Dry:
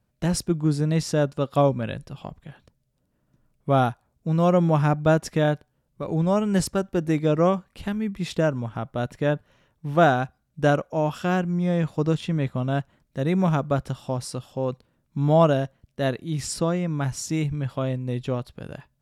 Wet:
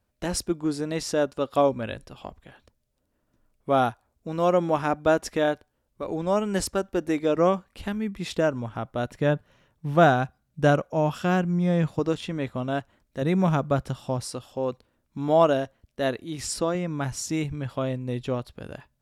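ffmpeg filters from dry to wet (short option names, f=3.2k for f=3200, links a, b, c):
-af "asetnsamples=n=441:p=0,asendcmd='7.37 equalizer g -8;9.15 equalizer g 0.5;11.99 equalizer g -11;13.22 equalizer g -1.5;14.2 equalizer g -12.5;16.75 equalizer g -6',equalizer=f=150:t=o:w=0.62:g=-15"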